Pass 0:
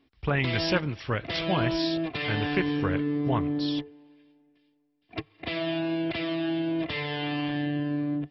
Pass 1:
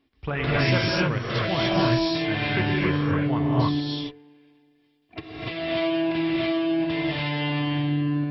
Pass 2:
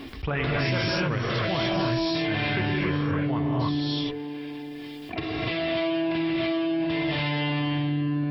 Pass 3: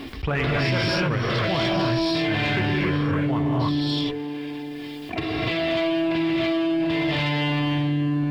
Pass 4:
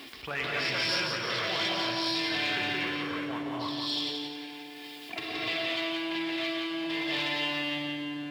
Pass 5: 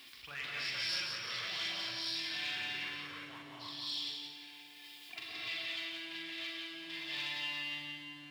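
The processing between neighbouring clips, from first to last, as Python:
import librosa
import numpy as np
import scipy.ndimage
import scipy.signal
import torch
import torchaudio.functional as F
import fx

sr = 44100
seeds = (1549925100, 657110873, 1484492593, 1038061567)

y1 = fx.rev_gated(x, sr, seeds[0], gate_ms=320, shape='rising', drr_db=-5.5)
y1 = y1 * librosa.db_to_amplitude(-2.5)
y2 = fx.env_flatten(y1, sr, amount_pct=70)
y2 = y2 * librosa.db_to_amplitude(-6.0)
y3 = fx.leveller(y2, sr, passes=1)
y4 = fx.highpass(y3, sr, hz=540.0, slope=6)
y4 = fx.high_shelf(y4, sr, hz=2400.0, db=9.0)
y4 = fx.echo_feedback(y4, sr, ms=174, feedback_pct=42, wet_db=-5.0)
y4 = y4 * librosa.db_to_amplitude(-8.5)
y5 = fx.tone_stack(y4, sr, knobs='5-5-5')
y5 = fx.doubler(y5, sr, ms=42.0, db=-6.5)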